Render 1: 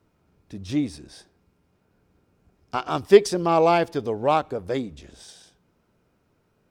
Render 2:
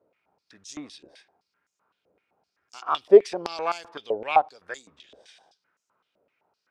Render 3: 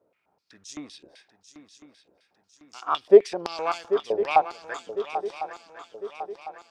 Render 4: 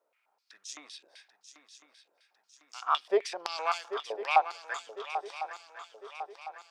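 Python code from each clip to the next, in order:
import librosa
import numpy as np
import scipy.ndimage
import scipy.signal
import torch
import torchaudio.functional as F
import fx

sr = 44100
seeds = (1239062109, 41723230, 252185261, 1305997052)

y1 = fx.filter_held_bandpass(x, sr, hz=7.8, low_hz=550.0, high_hz=6800.0)
y1 = y1 * 10.0 ** (8.5 / 20.0)
y2 = fx.echo_swing(y1, sr, ms=1052, ratio=3, feedback_pct=50, wet_db=-11.0)
y3 = scipy.signal.sosfilt(scipy.signal.butter(2, 880.0, 'highpass', fs=sr, output='sos'), y2)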